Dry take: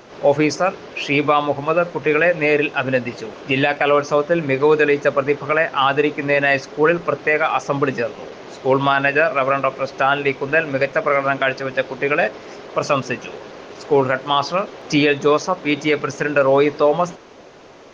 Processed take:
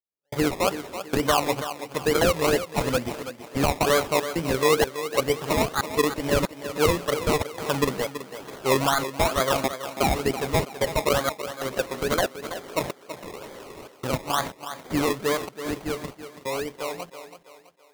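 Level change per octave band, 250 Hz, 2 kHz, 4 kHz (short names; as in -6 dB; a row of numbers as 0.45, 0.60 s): -6.0, -11.0, -2.0 dB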